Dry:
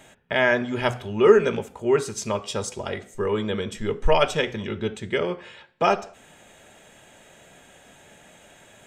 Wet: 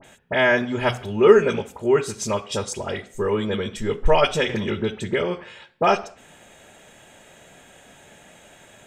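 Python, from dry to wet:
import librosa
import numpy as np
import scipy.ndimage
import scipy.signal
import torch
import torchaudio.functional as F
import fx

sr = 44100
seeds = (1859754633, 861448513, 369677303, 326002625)

y = fx.dispersion(x, sr, late='highs', ms=42.0, hz=2300.0)
y = fx.band_squash(y, sr, depth_pct=70, at=(4.49, 5.44))
y = F.gain(torch.from_numpy(y), 2.0).numpy()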